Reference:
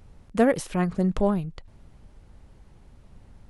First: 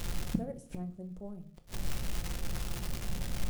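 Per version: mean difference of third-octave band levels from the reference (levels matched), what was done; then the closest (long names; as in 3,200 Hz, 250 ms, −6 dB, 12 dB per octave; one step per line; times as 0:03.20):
20.0 dB: flat-topped bell 2,200 Hz −12 dB 2.6 octaves
surface crackle 330 per second −40 dBFS
gate with flip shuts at −28 dBFS, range −34 dB
rectangular room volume 440 cubic metres, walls furnished, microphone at 0.89 metres
level +12 dB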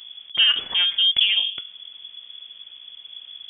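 11.5 dB: hum removal 100.5 Hz, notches 22
in parallel at −3 dB: brickwall limiter −19.5 dBFS, peak gain reduction 12 dB
on the sum: soft clipping −9 dBFS, distortion −21 dB
voice inversion scrambler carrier 3,400 Hz
level +1.5 dB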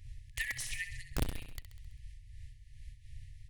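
15.5 dB: brick-wall band-stop 130–1,700 Hz
wrap-around overflow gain 24 dB
repeating echo 66 ms, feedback 55%, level −10 dB
amplitude modulation by smooth noise, depth 65%
level +3.5 dB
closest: second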